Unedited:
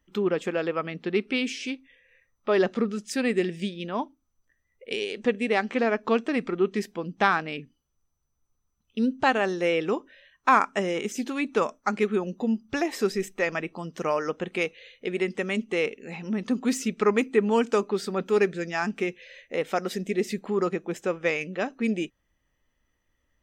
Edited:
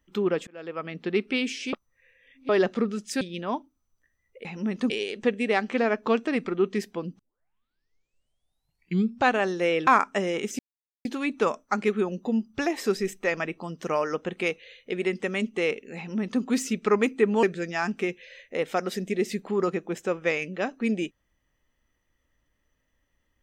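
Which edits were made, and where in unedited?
0.47–1.02 fade in
1.73–2.49 reverse
3.21–3.67 cut
7.2 tape start 2.18 s
9.88–10.48 cut
11.2 insert silence 0.46 s
16.12–16.57 copy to 4.91
17.58–18.42 cut

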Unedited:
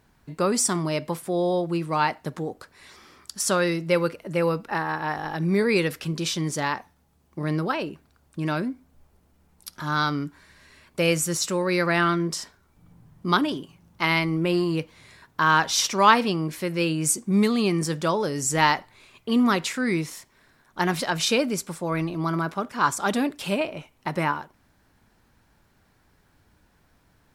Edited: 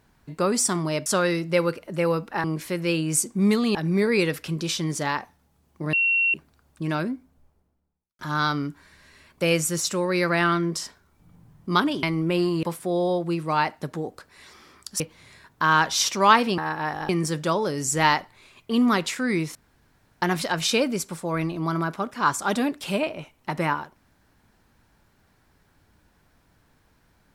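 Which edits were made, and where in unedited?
1.06–3.43 move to 14.78
4.81–5.32 swap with 16.36–17.67
7.5–7.91 bleep 2730 Hz -18 dBFS
8.54–9.76 studio fade out
13.6–14.18 cut
20.13–20.8 room tone

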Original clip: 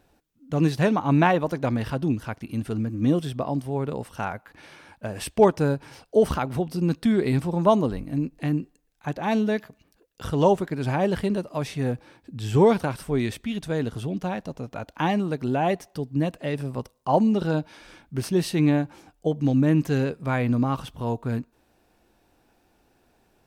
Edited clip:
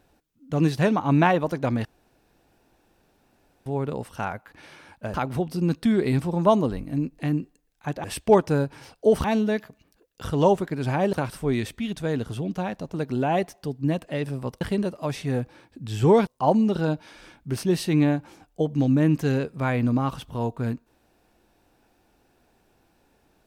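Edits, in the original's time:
1.85–3.66 room tone
5.14–6.34 move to 9.24
11.13–12.79 move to 16.93
14.6–15.26 cut

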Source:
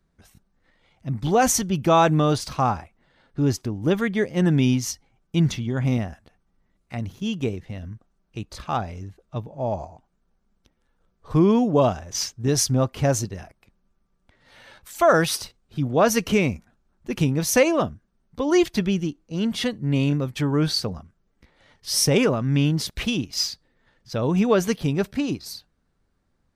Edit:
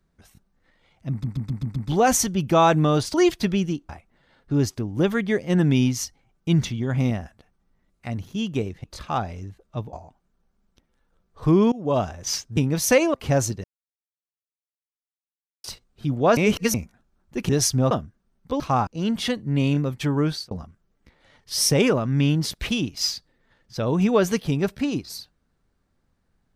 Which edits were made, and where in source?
1.11 stutter 0.13 s, 6 plays
2.49–2.76 swap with 18.48–19.23
7.71–8.43 cut
9.52–9.81 cut
11.6–11.95 fade in, from -22.5 dB
12.45–12.87 swap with 17.22–17.79
13.37–15.37 mute
16.1–16.47 reverse
20.56–20.87 fade out

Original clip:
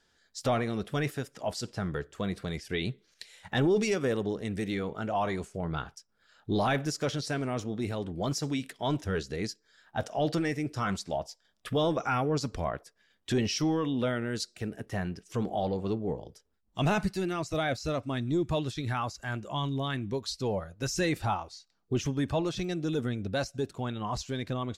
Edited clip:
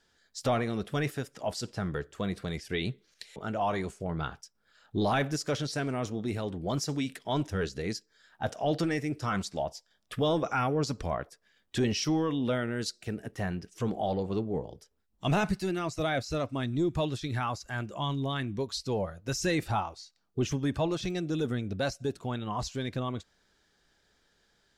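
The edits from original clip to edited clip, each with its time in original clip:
3.36–4.9 cut

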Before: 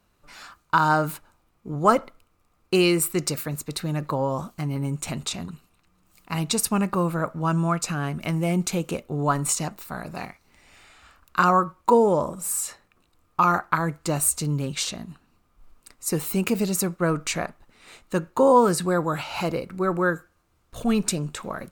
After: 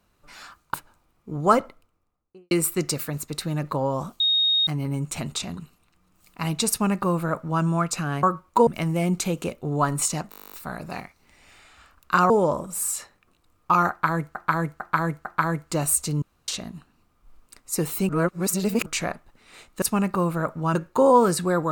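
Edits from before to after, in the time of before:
0.74–1.12 cut
1.88–2.89 studio fade out
4.58 add tone 3730 Hz -17.5 dBFS 0.47 s
6.61–7.54 copy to 18.16
9.77 stutter 0.02 s, 12 plays
11.55–11.99 move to 8.14
13.59–14.04 loop, 4 plays
14.56–14.82 room tone
16.43–17.2 reverse

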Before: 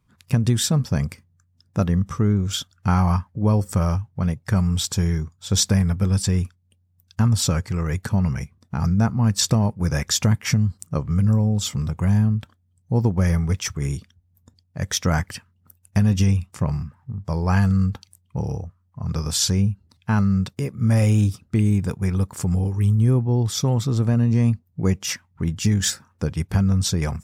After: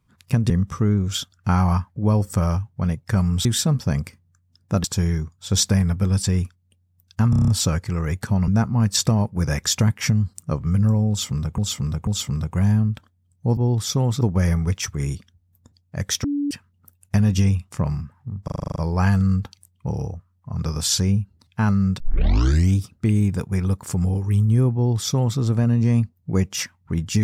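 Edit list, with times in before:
0.5–1.89 move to 4.84
7.3 stutter 0.03 s, 7 plays
8.3–8.92 cut
11.53–12.02 loop, 3 plays
15.06–15.33 bleep 287 Hz -20 dBFS
17.26 stutter 0.04 s, 9 plays
20.5 tape start 0.77 s
23.25–23.89 copy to 13.03

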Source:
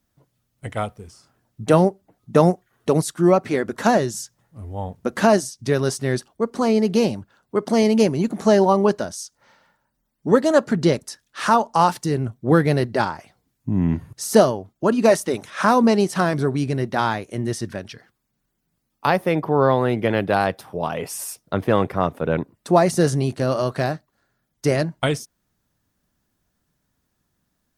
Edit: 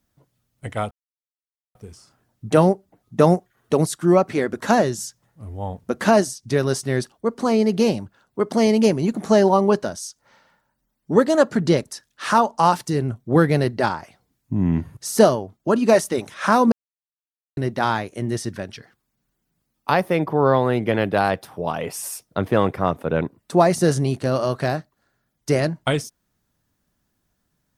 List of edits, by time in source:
0.91 insert silence 0.84 s
15.88–16.73 mute

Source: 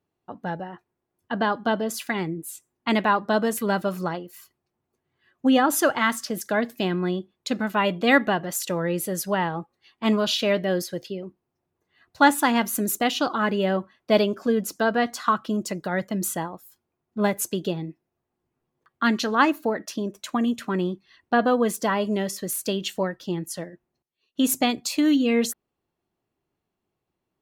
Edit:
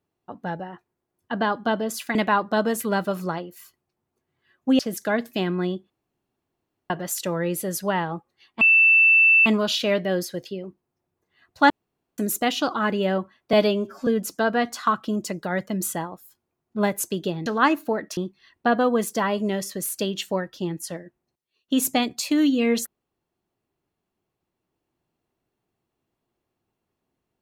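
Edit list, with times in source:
2.15–2.92 cut
5.56–6.23 cut
7.34–8.34 room tone
10.05 add tone 2660 Hz -12 dBFS 0.85 s
12.29–12.77 room tone
14.12–14.48 stretch 1.5×
17.87–19.23 cut
19.94–20.84 cut

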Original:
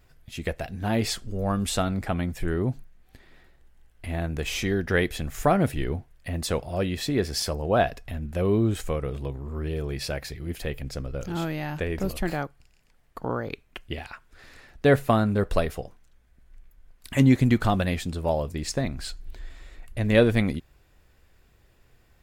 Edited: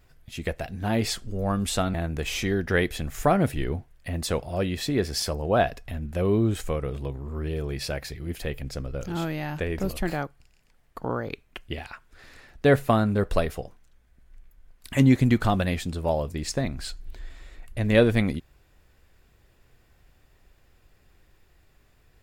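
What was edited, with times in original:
1.94–4.14 cut

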